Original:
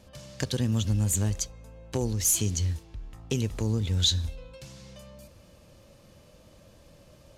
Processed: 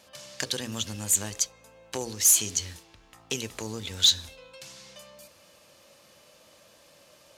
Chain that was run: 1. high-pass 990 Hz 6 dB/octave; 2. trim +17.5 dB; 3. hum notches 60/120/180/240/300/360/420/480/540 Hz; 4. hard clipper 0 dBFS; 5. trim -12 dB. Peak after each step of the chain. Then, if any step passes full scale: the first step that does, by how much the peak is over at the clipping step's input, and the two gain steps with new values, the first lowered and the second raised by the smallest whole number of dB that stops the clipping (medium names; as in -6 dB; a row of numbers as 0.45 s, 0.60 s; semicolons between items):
-14.5 dBFS, +3.0 dBFS, +3.0 dBFS, 0.0 dBFS, -12.0 dBFS; step 2, 3.0 dB; step 2 +14.5 dB, step 5 -9 dB